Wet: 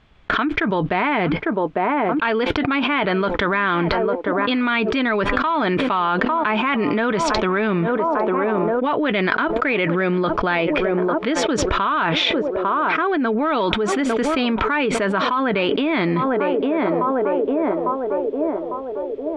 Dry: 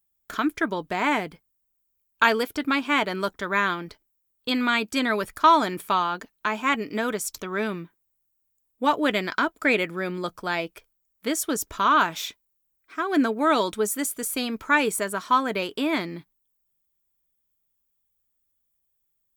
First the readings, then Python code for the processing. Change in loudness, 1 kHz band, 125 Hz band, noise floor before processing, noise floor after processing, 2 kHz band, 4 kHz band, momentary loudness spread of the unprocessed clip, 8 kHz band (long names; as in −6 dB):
+4.5 dB, +4.0 dB, +13.0 dB, −74 dBFS, −28 dBFS, +4.5 dB, +5.0 dB, 10 LU, −3.5 dB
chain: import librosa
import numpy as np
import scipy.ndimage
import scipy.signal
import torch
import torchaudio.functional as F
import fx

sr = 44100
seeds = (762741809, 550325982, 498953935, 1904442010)

p1 = 10.0 ** (-17.0 / 20.0) * np.tanh(x / 10.0 ** (-17.0 / 20.0))
p2 = x + (p1 * 10.0 ** (-4.0 / 20.0))
p3 = scipy.signal.sosfilt(scipy.signal.butter(4, 3300.0, 'lowpass', fs=sr, output='sos'), p2)
p4 = fx.echo_banded(p3, sr, ms=851, feedback_pct=64, hz=510.0, wet_db=-20.5)
p5 = fx.env_flatten(p4, sr, amount_pct=100)
y = p5 * 10.0 ** (-8.5 / 20.0)